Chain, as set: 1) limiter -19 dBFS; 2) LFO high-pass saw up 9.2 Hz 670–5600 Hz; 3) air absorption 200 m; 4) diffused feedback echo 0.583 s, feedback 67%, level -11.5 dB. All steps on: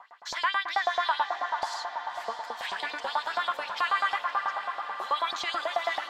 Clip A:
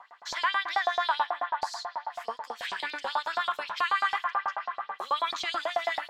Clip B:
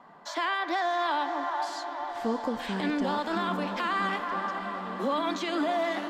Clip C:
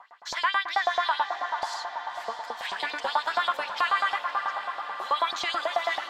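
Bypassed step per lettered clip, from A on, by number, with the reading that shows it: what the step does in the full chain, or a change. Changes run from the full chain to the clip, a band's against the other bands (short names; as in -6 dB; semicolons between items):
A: 4, echo-to-direct -9.0 dB to none; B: 2, 250 Hz band +25.0 dB; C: 1, momentary loudness spread change +1 LU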